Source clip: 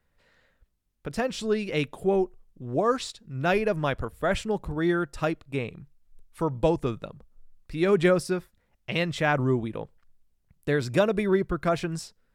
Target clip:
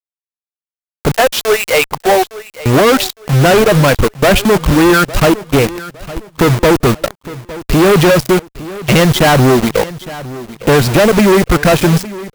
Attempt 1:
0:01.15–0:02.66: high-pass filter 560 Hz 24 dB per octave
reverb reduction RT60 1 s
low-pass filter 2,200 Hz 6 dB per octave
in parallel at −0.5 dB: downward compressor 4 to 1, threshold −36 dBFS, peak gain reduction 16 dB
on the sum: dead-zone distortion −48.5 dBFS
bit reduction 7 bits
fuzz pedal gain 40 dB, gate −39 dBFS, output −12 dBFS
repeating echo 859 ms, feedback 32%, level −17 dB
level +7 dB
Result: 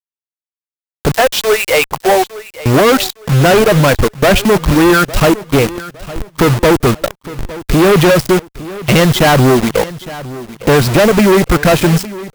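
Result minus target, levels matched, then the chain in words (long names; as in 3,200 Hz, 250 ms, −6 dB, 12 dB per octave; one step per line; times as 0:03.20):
downward compressor: peak gain reduction +6.5 dB; dead-zone distortion: distortion −4 dB
0:01.15–0:02.66: high-pass filter 560 Hz 24 dB per octave
reverb reduction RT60 1 s
low-pass filter 2,200 Hz 6 dB per octave
in parallel at −0.5 dB: downward compressor 4 to 1, threshold −27 dBFS, peak gain reduction 9 dB
on the sum: dead-zone distortion −42 dBFS
bit reduction 7 bits
fuzz pedal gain 40 dB, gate −39 dBFS, output −12 dBFS
repeating echo 859 ms, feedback 32%, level −17 dB
level +7 dB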